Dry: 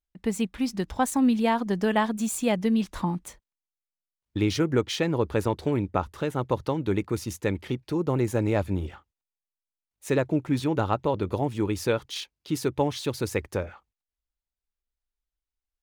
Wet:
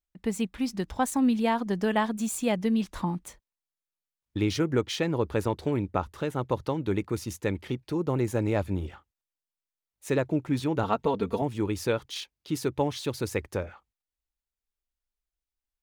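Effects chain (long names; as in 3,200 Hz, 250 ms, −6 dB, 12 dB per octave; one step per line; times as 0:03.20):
0:10.83–0:11.42: comb filter 4.4 ms, depth 82%
level −2 dB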